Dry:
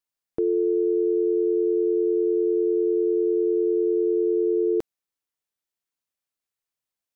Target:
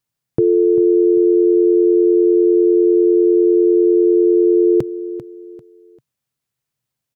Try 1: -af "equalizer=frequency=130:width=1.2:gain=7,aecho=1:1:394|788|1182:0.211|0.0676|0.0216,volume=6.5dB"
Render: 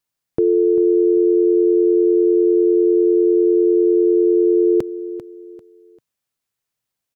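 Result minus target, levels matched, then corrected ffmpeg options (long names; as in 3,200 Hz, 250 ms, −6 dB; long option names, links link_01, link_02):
125 Hz band −7.0 dB
-af "equalizer=frequency=130:width=1.2:gain=18,aecho=1:1:394|788|1182:0.211|0.0676|0.0216,volume=6.5dB"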